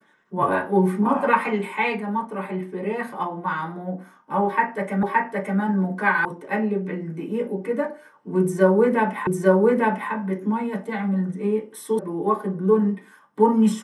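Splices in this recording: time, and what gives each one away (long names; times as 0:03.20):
0:05.03: the same again, the last 0.57 s
0:06.25: cut off before it has died away
0:09.27: the same again, the last 0.85 s
0:11.99: cut off before it has died away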